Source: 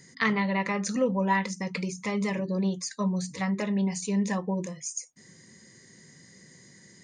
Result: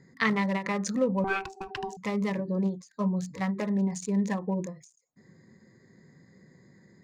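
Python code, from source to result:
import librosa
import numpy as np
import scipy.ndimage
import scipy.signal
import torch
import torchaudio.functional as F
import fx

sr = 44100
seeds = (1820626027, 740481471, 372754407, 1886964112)

y = fx.wiener(x, sr, points=15)
y = fx.ring_mod(y, sr, carrier_hz=580.0, at=(1.24, 1.97))
y = fx.end_taper(y, sr, db_per_s=170.0)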